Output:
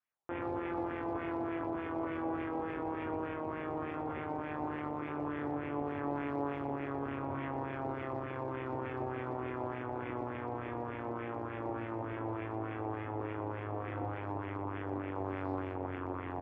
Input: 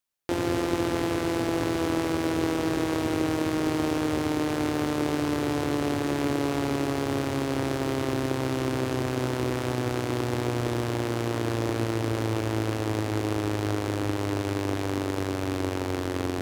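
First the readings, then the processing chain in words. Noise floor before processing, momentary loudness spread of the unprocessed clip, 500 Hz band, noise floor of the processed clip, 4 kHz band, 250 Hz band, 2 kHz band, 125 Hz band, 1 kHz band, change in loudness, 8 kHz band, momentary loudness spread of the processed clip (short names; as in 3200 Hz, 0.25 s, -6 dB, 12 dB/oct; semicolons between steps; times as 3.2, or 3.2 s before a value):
-30 dBFS, 2 LU, -10.5 dB, -41 dBFS, -24.0 dB, -12.0 dB, -10.5 dB, -13.0 dB, -6.0 dB, -11.0 dB, under -40 dB, 3 LU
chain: rippled Chebyshev low-pass 3500 Hz, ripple 3 dB; de-hum 205.3 Hz, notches 27; LFO low-pass sine 3.4 Hz 810–2100 Hz; limiter -23 dBFS, peak gain reduction 11.5 dB; HPF 43 Hz 24 dB/oct; doubler 21 ms -9 dB; speakerphone echo 0.12 s, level -14 dB; gain -4 dB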